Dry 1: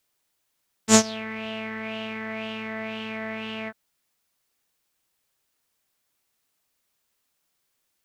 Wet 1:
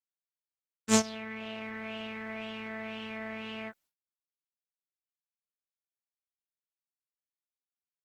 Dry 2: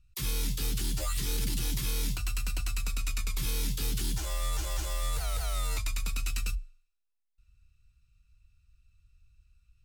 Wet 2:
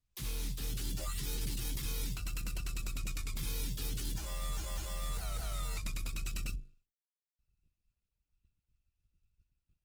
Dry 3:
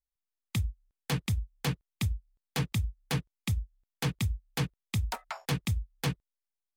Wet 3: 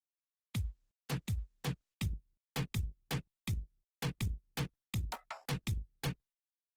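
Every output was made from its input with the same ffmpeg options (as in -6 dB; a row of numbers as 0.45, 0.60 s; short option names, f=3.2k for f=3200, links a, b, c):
-af "agate=range=-33dB:threshold=-52dB:ratio=3:detection=peak,volume=-6.5dB" -ar 48000 -c:a libopus -b:a 16k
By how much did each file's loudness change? -7.5, -6.5, -6.5 LU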